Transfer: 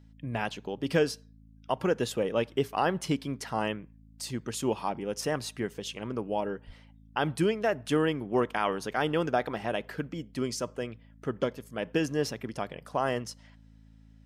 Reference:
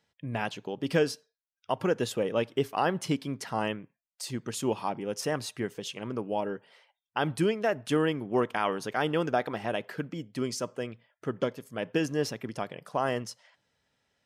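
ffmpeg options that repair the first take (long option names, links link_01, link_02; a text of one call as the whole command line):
ffmpeg -i in.wav -filter_complex "[0:a]bandreject=frequency=54.3:width_type=h:width=4,bandreject=frequency=108.6:width_type=h:width=4,bandreject=frequency=162.9:width_type=h:width=4,bandreject=frequency=217.2:width_type=h:width=4,bandreject=frequency=271.5:width_type=h:width=4,asplit=3[link_01][link_02][link_03];[link_01]afade=type=out:start_time=6.66:duration=0.02[link_04];[link_02]highpass=frequency=140:width=0.5412,highpass=frequency=140:width=1.3066,afade=type=in:start_time=6.66:duration=0.02,afade=type=out:start_time=6.78:duration=0.02[link_05];[link_03]afade=type=in:start_time=6.78:duration=0.02[link_06];[link_04][link_05][link_06]amix=inputs=3:normalize=0" out.wav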